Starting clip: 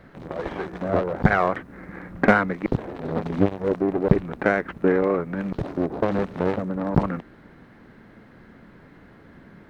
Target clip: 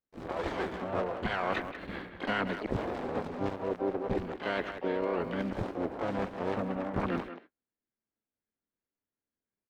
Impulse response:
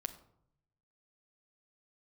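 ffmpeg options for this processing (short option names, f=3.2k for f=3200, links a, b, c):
-filter_complex "[0:a]agate=range=-50dB:threshold=-39dB:ratio=16:detection=peak,equalizer=f=150:t=o:w=0.3:g=-12,areverse,acompressor=threshold=-32dB:ratio=6,areverse,asplit=3[a][b][c];[b]asetrate=58866,aresample=44100,atempo=0.749154,volume=-6dB[d];[c]asetrate=88200,aresample=44100,atempo=0.5,volume=-9dB[e];[a][d][e]amix=inputs=3:normalize=0,asplit=2[f][g];[g]adelay=180,highpass=300,lowpass=3.4k,asoftclip=type=hard:threshold=-26dB,volume=-9dB[h];[f][h]amix=inputs=2:normalize=0,volume=1dB"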